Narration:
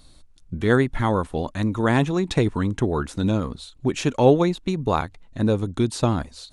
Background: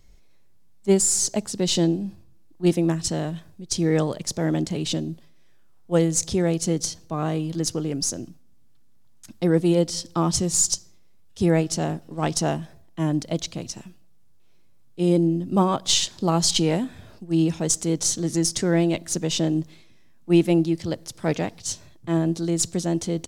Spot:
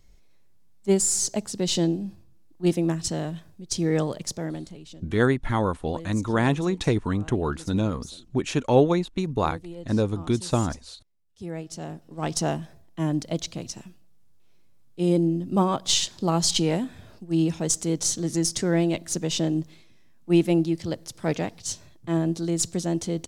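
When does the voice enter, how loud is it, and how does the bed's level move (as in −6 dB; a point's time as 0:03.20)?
4.50 s, −2.5 dB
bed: 0:04.27 −2.5 dB
0:04.91 −20 dB
0:11.17 −20 dB
0:12.41 −2 dB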